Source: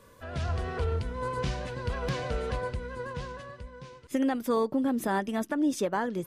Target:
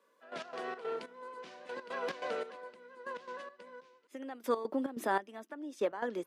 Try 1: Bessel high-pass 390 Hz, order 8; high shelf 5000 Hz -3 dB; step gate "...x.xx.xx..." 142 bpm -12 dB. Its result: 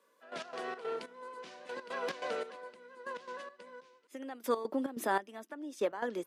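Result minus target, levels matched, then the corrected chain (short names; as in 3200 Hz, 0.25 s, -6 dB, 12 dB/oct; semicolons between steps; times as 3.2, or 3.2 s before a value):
8000 Hz band +4.0 dB
Bessel high-pass 390 Hz, order 8; high shelf 5000 Hz -9 dB; step gate "...x.xx.xx..." 142 bpm -12 dB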